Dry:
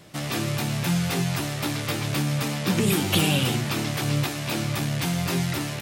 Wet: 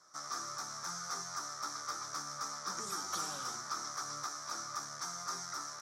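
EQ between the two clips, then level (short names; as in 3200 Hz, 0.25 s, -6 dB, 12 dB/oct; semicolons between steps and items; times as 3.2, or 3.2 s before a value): double band-pass 2700 Hz, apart 2.2 oct; +1.0 dB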